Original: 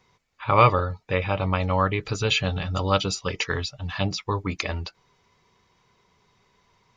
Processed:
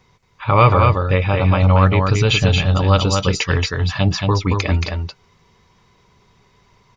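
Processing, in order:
low-shelf EQ 180 Hz +7.5 dB
in parallel at −1.5 dB: brickwall limiter −12 dBFS, peak gain reduction 8 dB
on the sum: single-tap delay 226 ms −4 dB

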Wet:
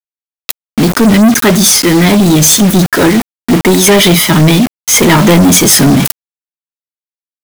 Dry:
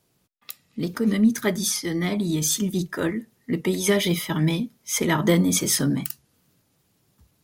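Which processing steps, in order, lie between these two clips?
bit reduction 6 bits
leveller curve on the samples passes 5
level +3.5 dB

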